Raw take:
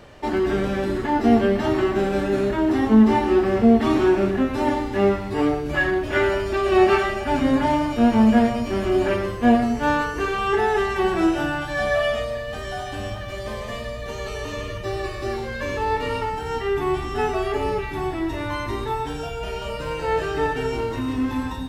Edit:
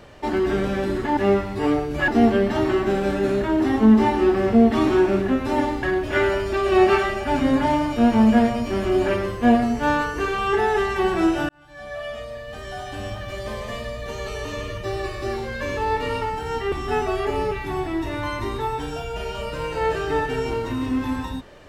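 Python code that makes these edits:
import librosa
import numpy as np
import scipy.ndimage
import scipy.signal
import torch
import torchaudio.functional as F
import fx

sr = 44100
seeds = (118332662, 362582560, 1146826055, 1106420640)

y = fx.edit(x, sr, fx.move(start_s=4.92, length_s=0.91, to_s=1.17),
    fx.fade_in_span(start_s=11.49, length_s=1.79),
    fx.cut(start_s=16.72, length_s=0.27), tone=tone)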